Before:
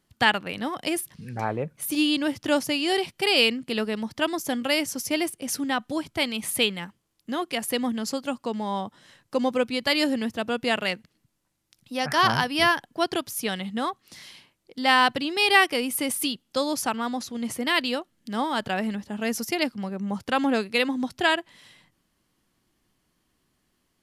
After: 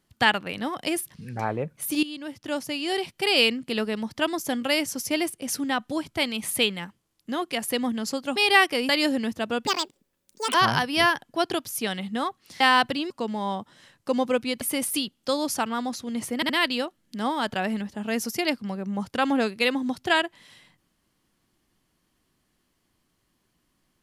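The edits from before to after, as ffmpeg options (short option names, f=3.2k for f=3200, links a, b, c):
-filter_complex "[0:a]asplit=11[a][b][c][d][e][f][g][h][i][j][k];[a]atrim=end=2.03,asetpts=PTS-STARTPTS,afade=t=out:st=2.026:d=0.004:c=hsin:silence=0.16788[l];[b]atrim=start=2.03:end=8.362,asetpts=PTS-STARTPTS,afade=t=in:d=1.38:silence=0.16788[m];[c]atrim=start=15.358:end=15.892[n];[d]atrim=start=9.868:end=10.654[o];[e]atrim=start=10.65:end=12.16,asetpts=PTS-STARTPTS,asetrate=76293,aresample=44100[p];[f]atrim=start=12.156:end=14.222[q];[g]atrim=start=14.858:end=15.362[r];[h]atrim=start=8.358:end=9.872[s];[i]atrim=start=15.888:end=17.702[t];[j]atrim=start=17.628:end=17.702[u];[k]atrim=start=17.628[v];[l][m]concat=n=2:v=0:a=1[w];[w][n]acrossfade=d=0.004:c1=hsin:c2=hsin[x];[x][o]acrossfade=d=0.004:c1=hsin:c2=hsin[y];[y][p]acrossfade=d=0.004:c1=hsin:c2=hsin[z];[z][q]acrossfade=d=0.004:c1=hsin:c2=hsin[aa];[aa][r]acrossfade=d=0.004:c1=hsin:c2=hsin[ab];[ab][s]acrossfade=d=0.004:c1=hsin:c2=hsin[ac];[ac][t]acrossfade=d=0.004:c1=hsin:c2=hsin[ad];[ad][u]acrossfade=d=0.004:c1=hsin:c2=hsin[ae];[ae][v]acrossfade=d=0.004:c1=hsin:c2=hsin"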